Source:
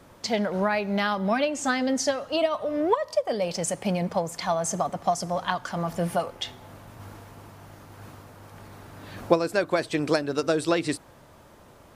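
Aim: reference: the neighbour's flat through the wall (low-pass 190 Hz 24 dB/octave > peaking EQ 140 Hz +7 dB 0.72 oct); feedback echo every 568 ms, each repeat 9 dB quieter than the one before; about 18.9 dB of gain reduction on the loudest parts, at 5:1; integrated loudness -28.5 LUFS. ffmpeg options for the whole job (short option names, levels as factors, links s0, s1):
-af "acompressor=threshold=0.0141:ratio=5,lowpass=f=190:w=0.5412,lowpass=f=190:w=1.3066,equalizer=f=140:t=o:w=0.72:g=7,aecho=1:1:568|1136|1704|2272:0.355|0.124|0.0435|0.0152,volume=7.5"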